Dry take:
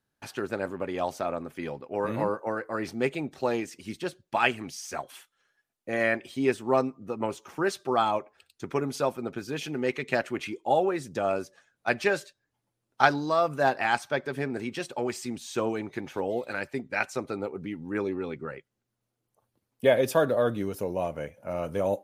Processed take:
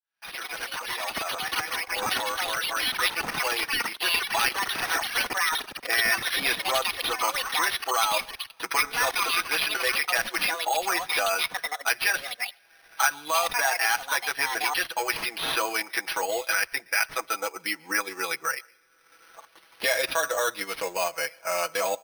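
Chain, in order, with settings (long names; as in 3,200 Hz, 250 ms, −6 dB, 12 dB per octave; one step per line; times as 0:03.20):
fade in at the beginning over 7.04 s
high-pass filter 1,400 Hz 12 dB per octave
comb filter 6.1 ms, depth 95%
in parallel at 0 dB: compressor whose output falls as the input rises −36 dBFS, ratio −1
on the sum: low-pass filter 4,100 Hz 12 dB per octave
on a send at −22 dB: convolution reverb, pre-delay 115 ms
on the sum: transient designer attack −3 dB, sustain −7 dB
delay with pitch and tempo change per echo 89 ms, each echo +7 semitones, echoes 3
bad sample-rate conversion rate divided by 6×, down none, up hold
multiband upward and downward compressor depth 70%
level +4.5 dB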